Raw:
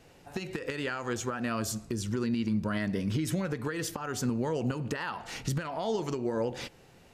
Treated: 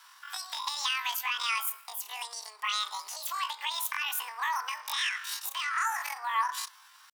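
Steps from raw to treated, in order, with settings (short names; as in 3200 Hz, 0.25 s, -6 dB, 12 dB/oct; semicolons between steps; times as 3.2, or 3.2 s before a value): elliptic high-pass 520 Hz, stop band 80 dB; pitch shift +12 st; gain +6 dB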